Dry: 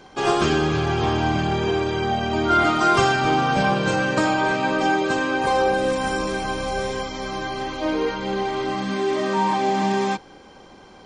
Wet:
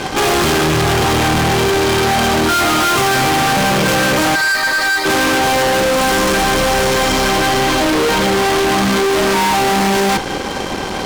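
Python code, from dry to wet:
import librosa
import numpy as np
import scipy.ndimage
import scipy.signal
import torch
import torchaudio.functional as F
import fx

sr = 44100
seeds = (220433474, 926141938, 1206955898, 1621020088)

y = fx.double_bandpass(x, sr, hz=2800.0, octaves=1.3, at=(4.34, 5.05), fade=0.02)
y = fx.fuzz(y, sr, gain_db=43.0, gate_db=-50.0)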